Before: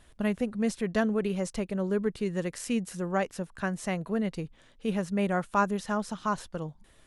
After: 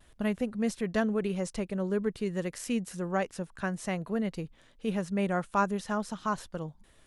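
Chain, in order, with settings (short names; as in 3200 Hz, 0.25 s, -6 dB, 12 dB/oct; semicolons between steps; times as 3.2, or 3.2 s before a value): vibrato 0.51 Hz 19 cents; gain -1.5 dB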